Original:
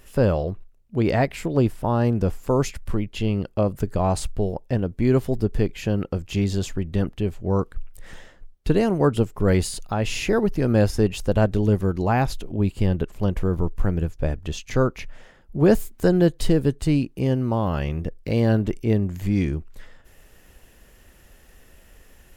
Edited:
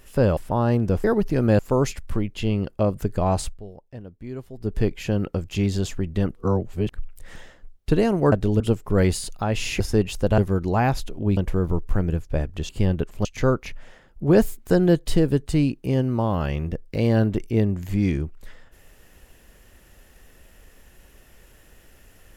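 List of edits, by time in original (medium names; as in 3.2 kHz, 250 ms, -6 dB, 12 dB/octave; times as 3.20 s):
0.37–1.70 s: delete
4.20–5.54 s: dip -15.5 dB, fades 0.18 s
7.13–7.72 s: reverse
10.30–10.85 s: move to 2.37 s
11.43–11.71 s: move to 9.10 s
12.70–13.26 s: move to 14.58 s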